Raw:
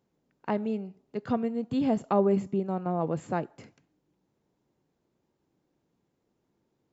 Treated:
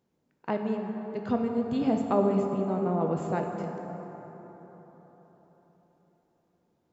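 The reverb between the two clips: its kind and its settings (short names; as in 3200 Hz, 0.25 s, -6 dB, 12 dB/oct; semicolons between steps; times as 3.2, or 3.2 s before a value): plate-style reverb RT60 4.4 s, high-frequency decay 0.45×, DRR 2.5 dB; gain -1 dB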